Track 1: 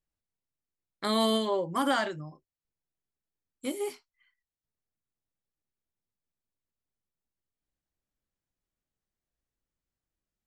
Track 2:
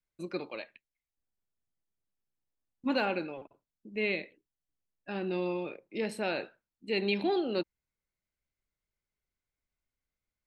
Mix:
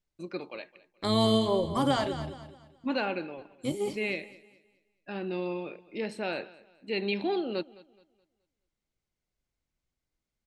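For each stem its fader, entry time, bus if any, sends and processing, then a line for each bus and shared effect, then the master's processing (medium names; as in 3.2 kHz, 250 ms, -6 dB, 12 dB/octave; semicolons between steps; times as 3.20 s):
+2.0 dB, 0.00 s, no send, echo send -11.5 dB, octave divider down 1 oct, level -5 dB; peaking EQ 1.6 kHz -9.5 dB 0.87 oct
-0.5 dB, 0.00 s, no send, echo send -20.5 dB, none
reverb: none
echo: feedback delay 212 ms, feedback 34%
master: low-pass 7.5 kHz 12 dB/octave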